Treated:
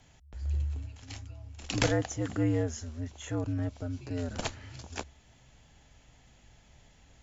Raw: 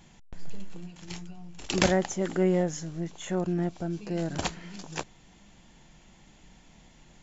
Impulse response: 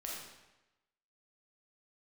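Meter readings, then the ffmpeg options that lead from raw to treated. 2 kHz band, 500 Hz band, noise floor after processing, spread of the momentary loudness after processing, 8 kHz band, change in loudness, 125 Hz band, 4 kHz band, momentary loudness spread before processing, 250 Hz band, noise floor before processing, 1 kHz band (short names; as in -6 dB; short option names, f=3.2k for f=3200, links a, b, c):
-3.5 dB, -6.5 dB, -61 dBFS, 16 LU, n/a, -4.0 dB, +1.0 dB, -3.5 dB, 20 LU, -4.5 dB, -57 dBFS, -6.0 dB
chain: -af "afreqshift=-73,volume=-3.5dB"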